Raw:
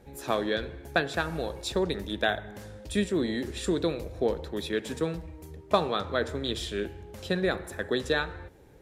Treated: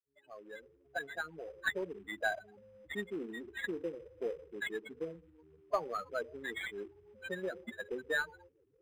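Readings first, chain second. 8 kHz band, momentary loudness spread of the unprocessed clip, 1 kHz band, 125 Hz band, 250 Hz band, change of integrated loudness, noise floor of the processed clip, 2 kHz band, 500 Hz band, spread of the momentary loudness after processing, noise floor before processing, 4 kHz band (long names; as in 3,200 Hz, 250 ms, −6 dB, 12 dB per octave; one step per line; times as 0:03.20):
−14.0 dB, 10 LU, −10.0 dB, −20.5 dB, −14.5 dB, −9.5 dB, −70 dBFS, −4.5 dB, −10.5 dB, 14 LU, −50 dBFS, −15.0 dB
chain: fade in at the beginning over 1.68 s
spectral peaks only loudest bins 8
first difference
floating-point word with a short mantissa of 2 bits
linearly interpolated sample-rate reduction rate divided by 8×
level +14.5 dB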